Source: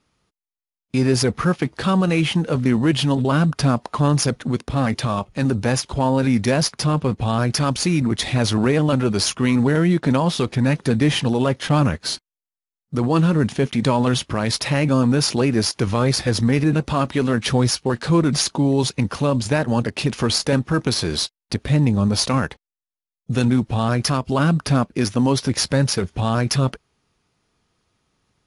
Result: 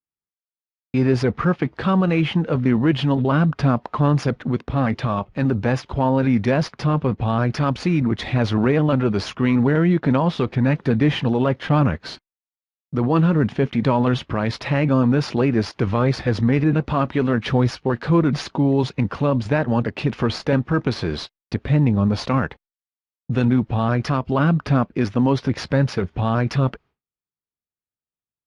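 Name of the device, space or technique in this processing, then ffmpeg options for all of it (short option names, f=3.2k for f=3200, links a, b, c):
hearing-loss simulation: -af "lowpass=2.6k,agate=range=-33dB:threshold=-43dB:ratio=3:detection=peak"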